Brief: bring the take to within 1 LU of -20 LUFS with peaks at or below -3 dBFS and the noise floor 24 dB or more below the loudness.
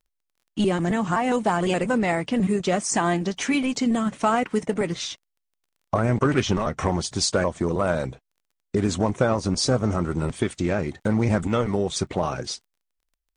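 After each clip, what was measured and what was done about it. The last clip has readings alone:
tick rate 21 per s; loudness -24.0 LUFS; peak level -9.0 dBFS; loudness target -20.0 LUFS
-> de-click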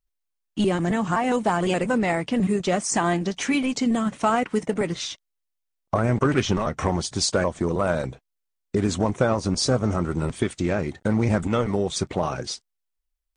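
tick rate 0.075 per s; loudness -24.0 LUFS; peak level -9.0 dBFS; loudness target -20.0 LUFS
-> trim +4 dB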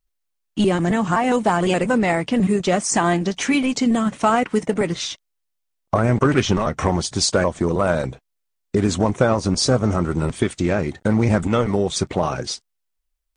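loudness -20.0 LUFS; peak level -5.0 dBFS; noise floor -76 dBFS

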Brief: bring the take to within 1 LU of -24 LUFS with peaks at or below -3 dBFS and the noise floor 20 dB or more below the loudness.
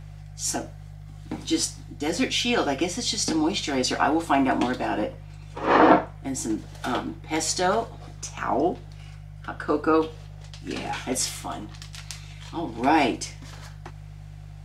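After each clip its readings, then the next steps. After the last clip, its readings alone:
hum 50 Hz; highest harmonic 150 Hz; hum level -39 dBFS; loudness -25.0 LUFS; peak level -2.5 dBFS; loudness target -24.0 LUFS
-> de-hum 50 Hz, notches 3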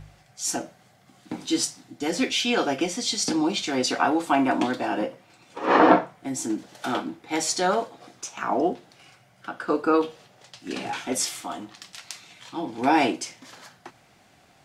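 hum not found; loudness -25.0 LUFS; peak level -2.5 dBFS; loudness target -24.0 LUFS
-> trim +1 dB; peak limiter -3 dBFS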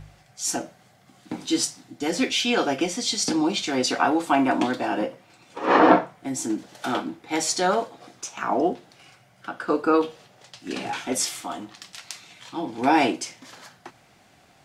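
loudness -24.0 LUFS; peak level -3.0 dBFS; noise floor -57 dBFS

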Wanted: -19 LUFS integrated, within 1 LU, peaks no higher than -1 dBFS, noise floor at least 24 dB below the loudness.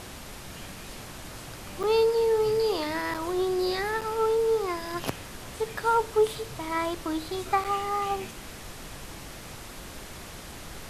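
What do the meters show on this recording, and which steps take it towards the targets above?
dropouts 4; longest dropout 6.6 ms; noise floor -43 dBFS; noise floor target -52 dBFS; loudness -27.5 LUFS; peak level -10.5 dBFS; loudness target -19.0 LUFS
-> interpolate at 1.83/3.14/4.01/7.64 s, 6.6 ms; noise print and reduce 9 dB; trim +8.5 dB

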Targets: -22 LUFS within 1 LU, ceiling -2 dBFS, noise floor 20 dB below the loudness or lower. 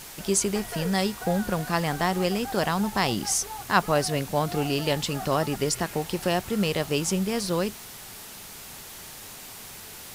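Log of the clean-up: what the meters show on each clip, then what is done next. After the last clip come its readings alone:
noise floor -43 dBFS; noise floor target -46 dBFS; loudness -26.0 LUFS; peak level -7.5 dBFS; loudness target -22.0 LUFS
-> noise reduction 6 dB, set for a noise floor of -43 dBFS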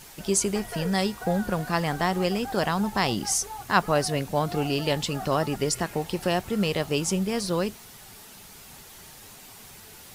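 noise floor -47 dBFS; loudness -26.0 LUFS; peak level -7.5 dBFS; loudness target -22.0 LUFS
-> trim +4 dB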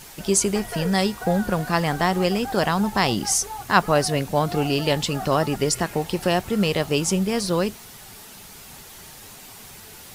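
loudness -22.0 LUFS; peak level -3.5 dBFS; noise floor -43 dBFS

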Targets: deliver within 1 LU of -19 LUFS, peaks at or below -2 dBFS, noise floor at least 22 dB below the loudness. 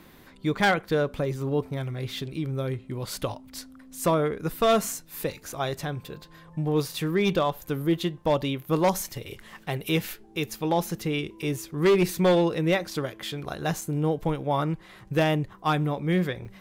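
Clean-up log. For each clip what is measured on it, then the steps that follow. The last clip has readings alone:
clipped samples 0.9%; clipping level -15.5 dBFS; dropouts 2; longest dropout 4.7 ms; loudness -27.0 LUFS; peak level -15.5 dBFS; loudness target -19.0 LUFS
-> clip repair -15.5 dBFS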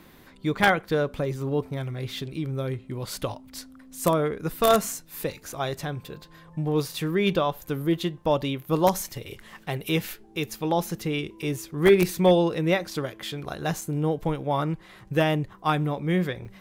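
clipped samples 0.0%; dropouts 2; longest dropout 4.7 ms
-> interpolate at 13.81/16.45 s, 4.7 ms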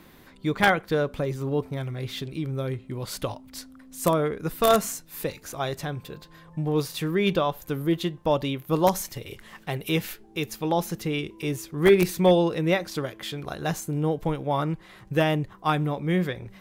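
dropouts 0; loudness -26.5 LUFS; peak level -6.5 dBFS; loudness target -19.0 LUFS
-> trim +7.5 dB; peak limiter -2 dBFS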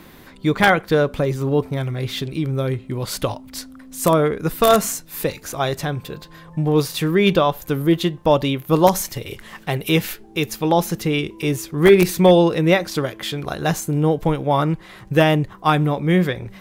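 loudness -19.5 LUFS; peak level -2.0 dBFS; noise floor -44 dBFS

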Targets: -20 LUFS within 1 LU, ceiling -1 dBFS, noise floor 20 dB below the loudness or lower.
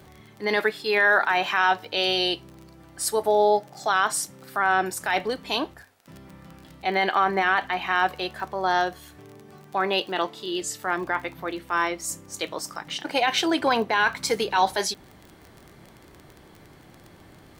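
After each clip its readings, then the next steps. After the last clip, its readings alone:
tick rate 27 per s; loudness -24.5 LUFS; peak level -9.0 dBFS; loudness target -20.0 LUFS
-> de-click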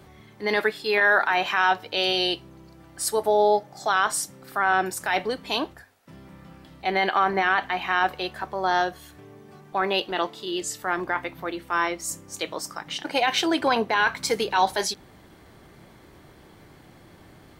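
tick rate 0.057 per s; loudness -24.5 LUFS; peak level -9.0 dBFS; loudness target -20.0 LUFS
-> trim +4.5 dB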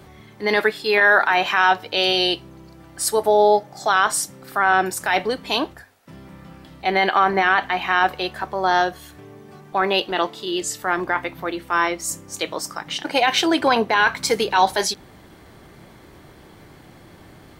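loudness -20.0 LUFS; peak level -4.5 dBFS; noise floor -47 dBFS

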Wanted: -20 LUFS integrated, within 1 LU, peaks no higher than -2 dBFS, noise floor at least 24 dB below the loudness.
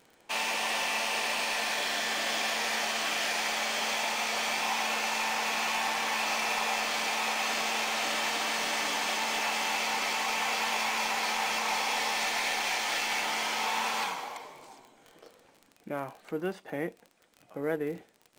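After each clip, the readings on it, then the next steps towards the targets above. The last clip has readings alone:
tick rate 25 per s; loudness -29.5 LUFS; peak level -17.0 dBFS; loudness target -20.0 LUFS
-> de-click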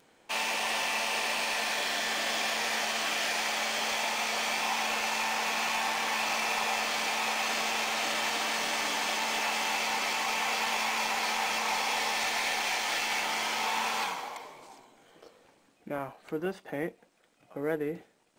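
tick rate 0.38 per s; loudness -29.5 LUFS; peak level -17.0 dBFS; loudness target -20.0 LUFS
-> trim +9.5 dB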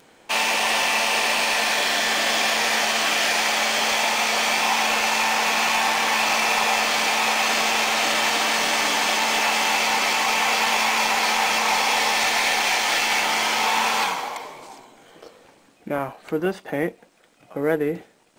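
loudness -20.0 LUFS; peak level -7.5 dBFS; noise floor -55 dBFS

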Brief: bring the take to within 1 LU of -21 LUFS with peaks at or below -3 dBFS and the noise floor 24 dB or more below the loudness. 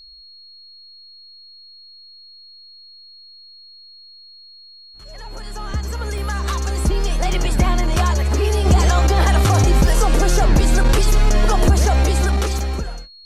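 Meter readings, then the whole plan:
dropouts 4; longest dropout 2.2 ms; steady tone 4.3 kHz; tone level -41 dBFS; loudness -18.0 LUFS; peak level -5.5 dBFS; loudness target -21.0 LUFS
-> interpolate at 6.18/7.33/9.87/12.59 s, 2.2 ms; band-stop 4.3 kHz, Q 30; trim -3 dB

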